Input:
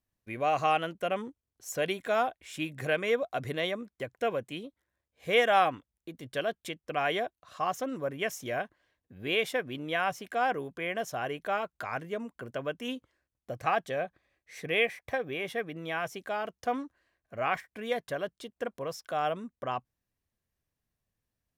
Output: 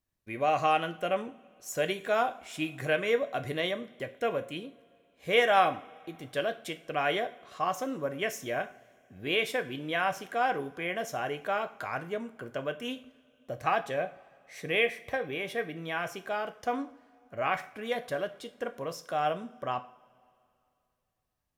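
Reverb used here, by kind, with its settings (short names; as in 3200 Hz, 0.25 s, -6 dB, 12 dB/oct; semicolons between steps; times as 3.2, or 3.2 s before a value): two-slope reverb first 0.41 s, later 2.7 s, from -22 dB, DRR 8.5 dB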